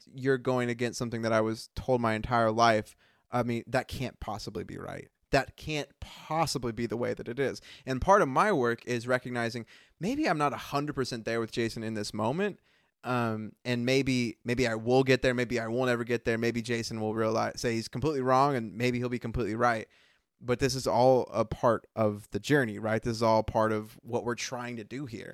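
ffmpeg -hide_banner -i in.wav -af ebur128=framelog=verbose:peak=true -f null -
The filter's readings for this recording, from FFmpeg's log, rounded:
Integrated loudness:
  I:         -29.5 LUFS
  Threshold: -39.8 LUFS
Loudness range:
  LRA:         4.8 LU
  Threshold: -49.7 LUFS
  LRA low:   -33.0 LUFS
  LRA high:  -28.2 LUFS
True peak:
  Peak:       -9.3 dBFS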